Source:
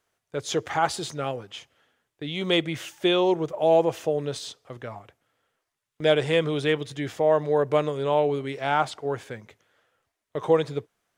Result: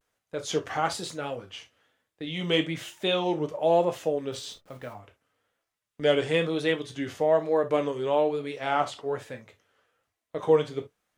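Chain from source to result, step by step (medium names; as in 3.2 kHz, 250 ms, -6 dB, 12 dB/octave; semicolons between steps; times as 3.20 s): 4.32–4.94 s: send-on-delta sampling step -49.5 dBFS; gated-style reverb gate 90 ms falling, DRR 5 dB; vibrato 1.1 Hz 100 cents; trim -3.5 dB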